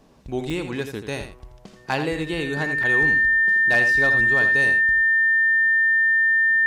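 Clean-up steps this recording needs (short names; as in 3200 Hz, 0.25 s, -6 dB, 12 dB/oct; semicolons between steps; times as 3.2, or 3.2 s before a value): clip repair -11.5 dBFS; notch 1800 Hz, Q 30; interpolate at 0.5/2.83, 3.9 ms; inverse comb 83 ms -8.5 dB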